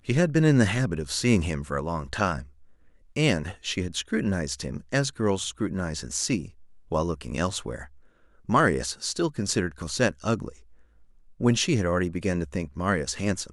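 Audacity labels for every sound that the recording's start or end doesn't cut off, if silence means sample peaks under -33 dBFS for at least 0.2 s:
3.160000	6.450000	sound
6.920000	7.830000	sound
8.490000	10.490000	sound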